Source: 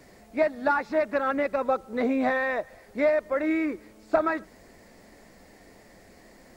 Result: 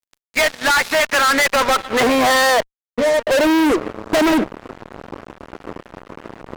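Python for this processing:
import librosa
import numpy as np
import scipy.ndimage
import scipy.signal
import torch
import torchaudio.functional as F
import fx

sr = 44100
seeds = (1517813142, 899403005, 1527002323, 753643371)

y = fx.octave_resonator(x, sr, note='A#', decay_s=0.13, at=(2.6, 3.27))
y = fx.filter_sweep_bandpass(y, sr, from_hz=2900.0, to_hz=350.0, start_s=0.9, end_s=4.22, q=1.4)
y = fx.fuzz(y, sr, gain_db=48.0, gate_db=-54.0)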